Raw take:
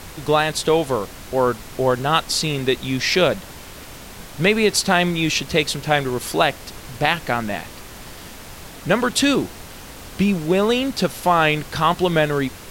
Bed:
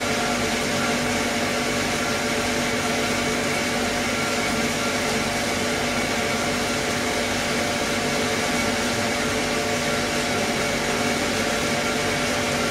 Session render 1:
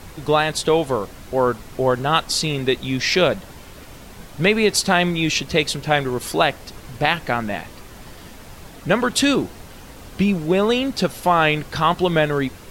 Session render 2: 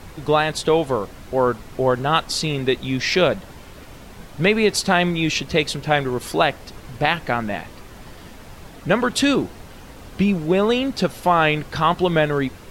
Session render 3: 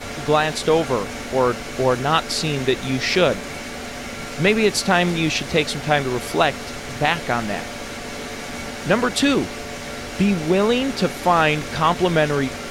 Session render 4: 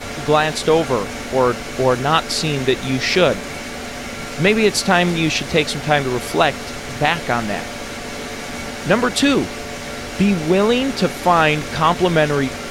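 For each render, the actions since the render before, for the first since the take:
denoiser 6 dB, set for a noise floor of -39 dBFS
high shelf 4700 Hz -5 dB
add bed -8.5 dB
gain +2.5 dB; limiter -1 dBFS, peak gain reduction 1 dB

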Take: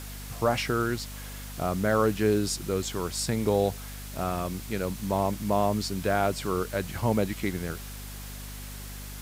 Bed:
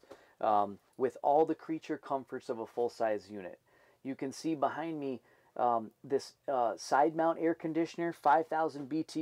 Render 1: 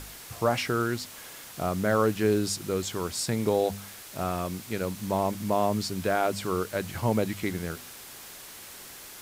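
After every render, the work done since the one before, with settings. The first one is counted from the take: de-hum 50 Hz, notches 5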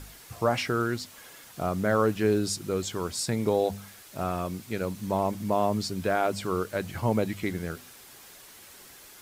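denoiser 6 dB, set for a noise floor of -45 dBFS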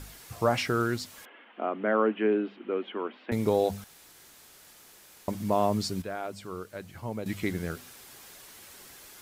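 1.25–3.32 Chebyshev band-pass 220–3100 Hz, order 5; 3.84–5.28 room tone; 6.02–7.26 gain -10 dB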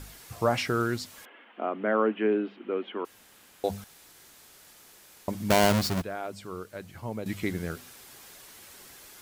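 3.05–3.64 room tone; 5.5–6.02 half-waves squared off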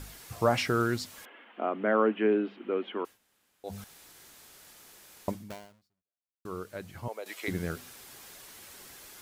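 3.02–3.81 dip -16 dB, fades 0.16 s; 5.29–6.45 fade out exponential; 7.08–7.48 HPF 460 Hz 24 dB/oct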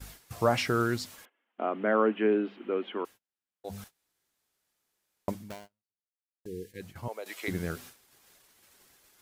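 6.06–6.81 spectral delete 530–1600 Hz; gate -47 dBFS, range -26 dB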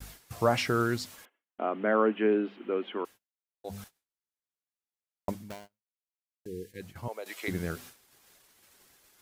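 gate with hold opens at -57 dBFS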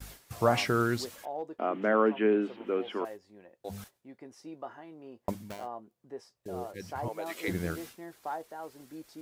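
add bed -10.5 dB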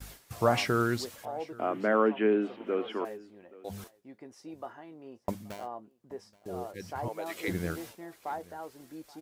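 echo 0.827 s -22.5 dB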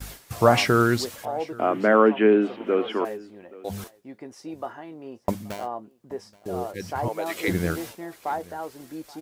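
gain +8 dB

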